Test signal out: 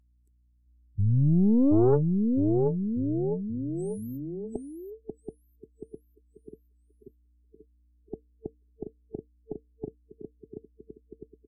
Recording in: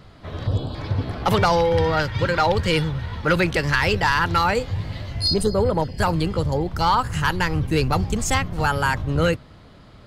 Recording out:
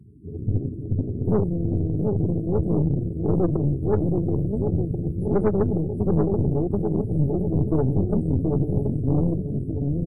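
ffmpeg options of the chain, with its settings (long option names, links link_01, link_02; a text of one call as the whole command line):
ffmpeg -i in.wav -filter_complex "[0:a]highpass=100,acrossover=split=150|2200[link_01][link_02][link_03];[link_03]acompressor=threshold=-38dB:ratio=6[link_04];[link_01][link_02][link_04]amix=inputs=3:normalize=0,afftfilt=real='re*(1-between(b*sr/4096,450,7900))':imag='im*(1-between(b*sr/4096,450,7900))':win_size=4096:overlap=0.75,acrossover=split=2800[link_05][link_06];[link_06]acompressor=threshold=-57dB:ratio=4:attack=1:release=60[link_07];[link_05][link_07]amix=inputs=2:normalize=0,aeval=exprs='val(0)+0.001*(sin(2*PI*60*n/s)+sin(2*PI*2*60*n/s)/2+sin(2*PI*3*60*n/s)/3+sin(2*PI*4*60*n/s)/4+sin(2*PI*5*60*n/s)/5)':channel_layout=same,asplit=2[link_08][link_09];[link_09]aecho=0:1:730|1387|1978|2510|2989:0.631|0.398|0.251|0.158|0.1[link_10];[link_08][link_10]amix=inputs=2:normalize=0,aeval=exprs='(tanh(10*val(0)+0.7)-tanh(0.7))/10':channel_layout=same,afftdn=noise_reduction=16:noise_floor=-49,volume=6dB" -ar 32000 -c:a libvorbis -b:a 64k out.ogg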